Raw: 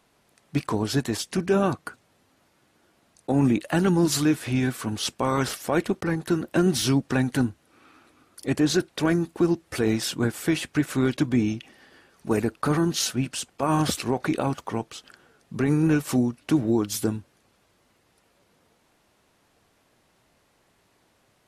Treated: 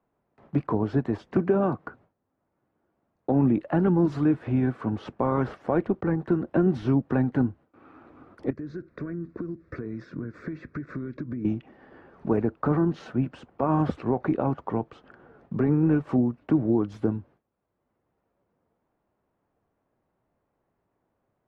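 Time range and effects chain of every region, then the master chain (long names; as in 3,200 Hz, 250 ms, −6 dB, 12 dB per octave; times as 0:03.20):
0:01.36–0:01.86: high-pass filter 140 Hz 6 dB per octave + multiband upward and downward compressor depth 100%
0:08.50–0:11.45: downward compressor 20 to 1, threshold −32 dBFS + phaser with its sweep stopped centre 3,000 Hz, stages 6
whole clip: low-pass filter 1,100 Hz 12 dB per octave; noise gate with hold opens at −53 dBFS; multiband upward and downward compressor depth 40%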